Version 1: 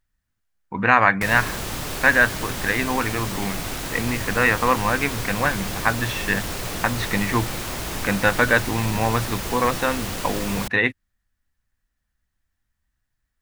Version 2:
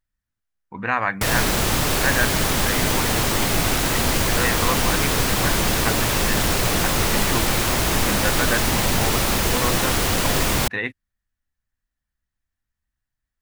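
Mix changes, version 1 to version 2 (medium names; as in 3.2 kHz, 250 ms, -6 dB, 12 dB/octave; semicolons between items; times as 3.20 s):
speech -6.5 dB; background +9.0 dB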